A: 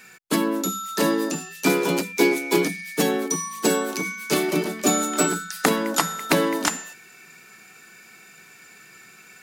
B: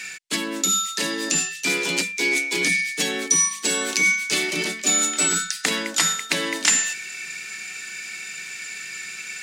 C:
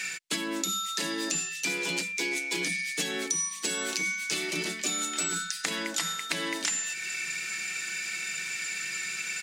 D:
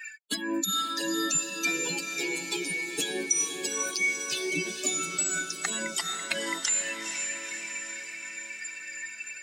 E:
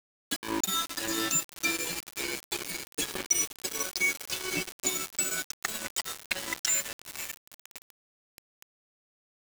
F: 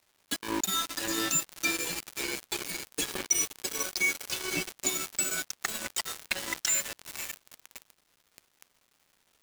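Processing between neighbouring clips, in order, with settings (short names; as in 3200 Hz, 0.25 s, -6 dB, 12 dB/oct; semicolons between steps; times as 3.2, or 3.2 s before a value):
reverse; compressor 6:1, threshold -29 dBFS, peak gain reduction 15 dB; reverse; band shelf 4000 Hz +14 dB 2.7 oct; gain +2 dB
comb 6 ms, depth 34%; compressor 6:1, threshold -28 dBFS, peak gain reduction 14.5 dB
per-bin expansion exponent 3; diffused feedback echo 0.483 s, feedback 58%, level -6 dB; gain +6.5 dB
sample gate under -27 dBFS
crackle 510/s -53 dBFS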